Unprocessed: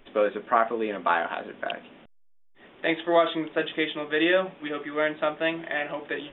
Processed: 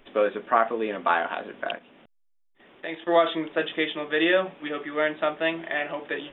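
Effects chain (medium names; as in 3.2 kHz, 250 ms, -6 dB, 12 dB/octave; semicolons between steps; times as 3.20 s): bass shelf 150 Hz -4.5 dB; 1.76–3.07 s: level held to a coarse grid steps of 11 dB; trim +1 dB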